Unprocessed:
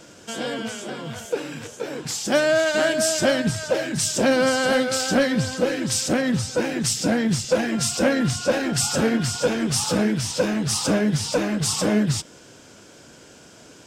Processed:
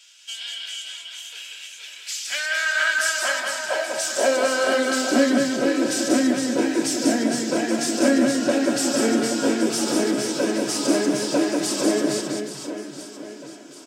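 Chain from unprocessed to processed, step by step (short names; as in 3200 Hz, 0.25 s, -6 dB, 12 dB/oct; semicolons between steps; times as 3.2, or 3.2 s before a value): high-pass sweep 2900 Hz -> 310 Hz, 1.89–4.98; reverse bouncing-ball echo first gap 0.19 s, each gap 1.4×, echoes 5; on a send at -4 dB: reverb, pre-delay 3 ms; on the sum: gain -4.5 dB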